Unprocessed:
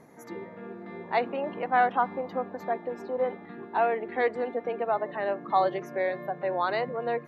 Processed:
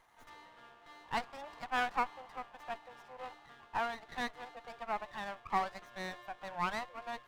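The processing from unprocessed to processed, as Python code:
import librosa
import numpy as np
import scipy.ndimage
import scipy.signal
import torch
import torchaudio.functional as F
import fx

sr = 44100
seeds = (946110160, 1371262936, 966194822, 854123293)

y = scipy.signal.sosfilt(scipy.signal.butter(4, 870.0, 'highpass', fs=sr, output='sos'), x)
y = fx.running_max(y, sr, window=9)
y = y * librosa.db_to_amplitude(-4.0)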